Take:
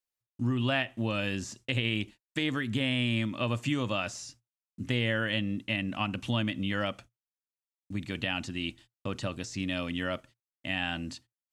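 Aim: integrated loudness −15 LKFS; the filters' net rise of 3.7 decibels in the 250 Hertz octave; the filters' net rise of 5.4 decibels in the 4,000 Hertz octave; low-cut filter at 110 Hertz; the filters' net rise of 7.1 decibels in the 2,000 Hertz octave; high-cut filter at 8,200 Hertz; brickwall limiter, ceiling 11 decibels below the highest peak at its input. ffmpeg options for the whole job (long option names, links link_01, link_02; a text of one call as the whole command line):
ffmpeg -i in.wav -af "highpass=110,lowpass=8200,equalizer=frequency=250:width_type=o:gain=4.5,equalizer=frequency=2000:width_type=o:gain=8,equalizer=frequency=4000:width_type=o:gain=3.5,volume=15.5dB,alimiter=limit=-2dB:level=0:latency=1" out.wav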